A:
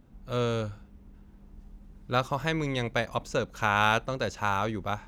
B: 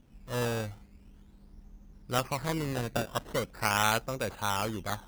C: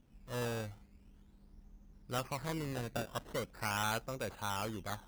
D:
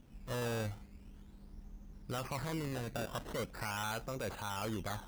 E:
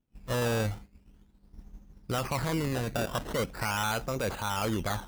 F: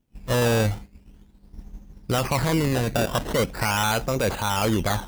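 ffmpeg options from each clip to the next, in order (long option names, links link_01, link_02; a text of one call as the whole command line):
ffmpeg -i in.wav -af "acrusher=samples=14:mix=1:aa=0.000001:lfo=1:lforange=14:lforate=0.42,volume=-3dB" out.wav
ffmpeg -i in.wav -af "asoftclip=type=tanh:threshold=-20dB,volume=-6dB" out.wav
ffmpeg -i in.wav -af "alimiter=level_in=14dB:limit=-24dB:level=0:latency=1:release=17,volume=-14dB,volume=6.5dB" out.wav
ffmpeg -i in.wav -af "agate=range=-33dB:threshold=-43dB:ratio=3:detection=peak,volume=8.5dB" out.wav
ffmpeg -i in.wav -af "equalizer=frequency=1300:width_type=o:width=0.48:gain=-3,volume=8dB" out.wav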